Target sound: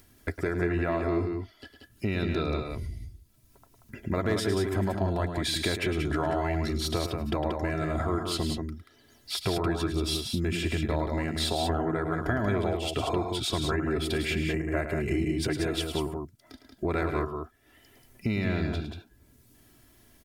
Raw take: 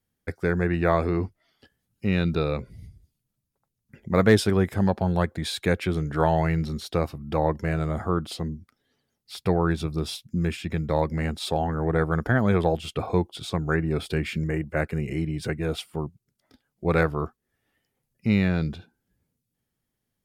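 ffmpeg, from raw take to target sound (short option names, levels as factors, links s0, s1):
-filter_complex "[0:a]aecho=1:1:3:0.58,acompressor=threshold=0.0282:ratio=5,asplit=2[s0][s1];[s1]alimiter=level_in=1.88:limit=0.0631:level=0:latency=1,volume=0.531,volume=1.26[s2];[s0][s2]amix=inputs=2:normalize=0,acompressor=mode=upward:threshold=0.00447:ratio=2.5,aecho=1:1:107|183:0.335|0.531"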